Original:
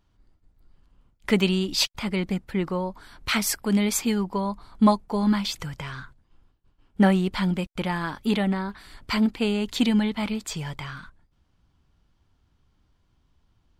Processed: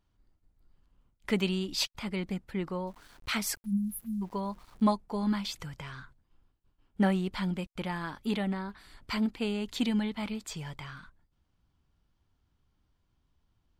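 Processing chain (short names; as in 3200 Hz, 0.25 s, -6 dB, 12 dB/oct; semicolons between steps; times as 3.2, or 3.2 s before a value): 3.56–4.22 spectral delete 230–9500 Hz; 2.87–4.84 sample gate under -47 dBFS; gain -7.5 dB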